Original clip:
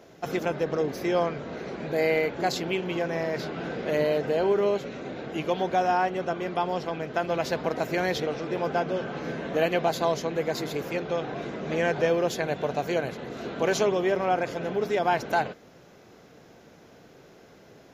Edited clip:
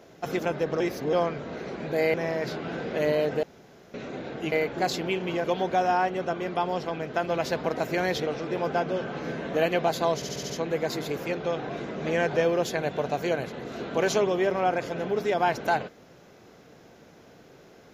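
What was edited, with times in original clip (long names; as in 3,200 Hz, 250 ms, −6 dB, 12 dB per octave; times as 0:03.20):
0:00.80–0:01.13: reverse
0:02.14–0:03.06: move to 0:05.44
0:04.35–0:04.86: fill with room tone
0:10.15: stutter 0.07 s, 6 plays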